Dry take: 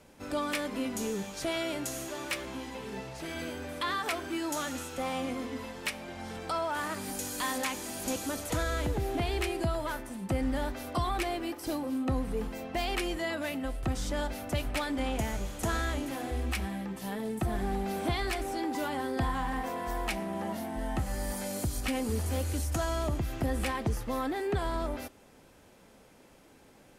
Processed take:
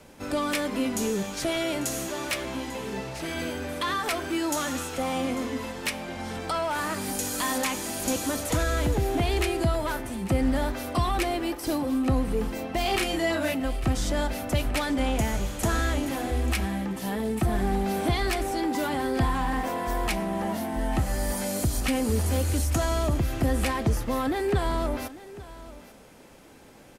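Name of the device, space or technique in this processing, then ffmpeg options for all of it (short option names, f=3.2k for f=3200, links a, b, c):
one-band saturation: -filter_complex "[0:a]acrossover=split=350|4500[a][b][c];[b]asoftclip=type=tanh:threshold=-29.5dB[d];[a][d][c]amix=inputs=3:normalize=0,asplit=3[e][f][g];[e]afade=t=out:st=12.84:d=0.02[h];[f]asplit=2[i][j];[j]adelay=33,volume=-3dB[k];[i][k]amix=inputs=2:normalize=0,afade=t=in:st=12.84:d=0.02,afade=t=out:st=13.53:d=0.02[l];[g]afade=t=in:st=13.53:d=0.02[m];[h][l][m]amix=inputs=3:normalize=0,aecho=1:1:845:0.133,volume=6.5dB"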